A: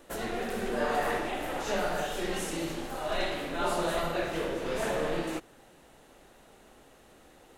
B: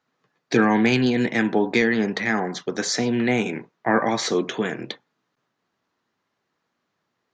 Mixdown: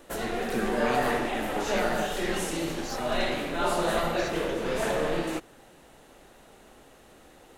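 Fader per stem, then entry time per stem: +3.0, −15.5 decibels; 0.00, 0.00 seconds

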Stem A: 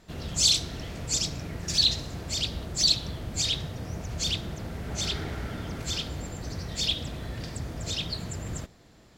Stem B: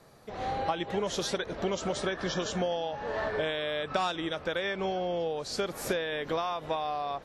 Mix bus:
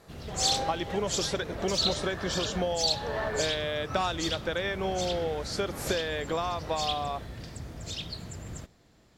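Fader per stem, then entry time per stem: −5.5, +0.5 decibels; 0.00, 0.00 seconds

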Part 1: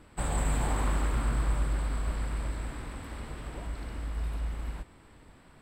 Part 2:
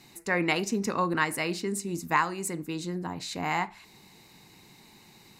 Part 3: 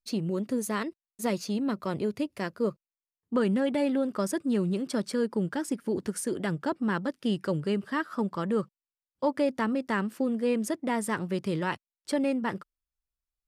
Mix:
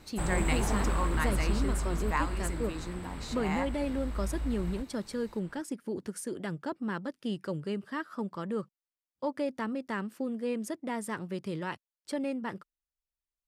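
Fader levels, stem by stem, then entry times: −1.5, −7.0, −6.0 decibels; 0.00, 0.00, 0.00 seconds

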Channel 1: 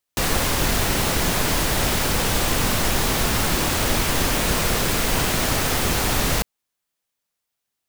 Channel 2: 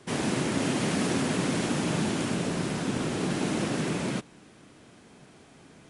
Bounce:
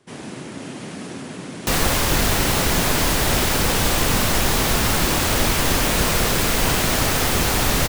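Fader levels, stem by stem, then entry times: +2.0, −6.0 decibels; 1.50, 0.00 seconds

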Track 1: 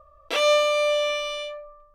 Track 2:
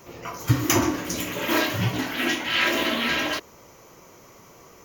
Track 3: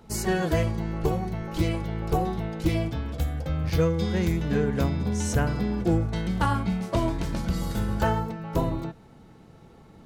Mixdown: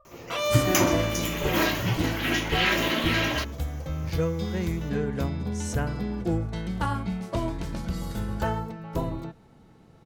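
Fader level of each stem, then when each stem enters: −7.5, −2.0, −3.5 decibels; 0.00, 0.05, 0.40 seconds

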